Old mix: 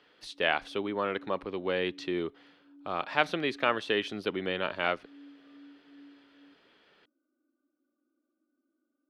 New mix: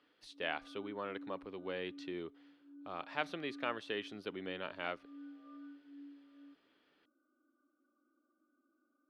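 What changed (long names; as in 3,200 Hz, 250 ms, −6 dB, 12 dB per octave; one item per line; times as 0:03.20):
speech −11.0 dB
background: add low-pass with resonance 1,300 Hz, resonance Q 3.4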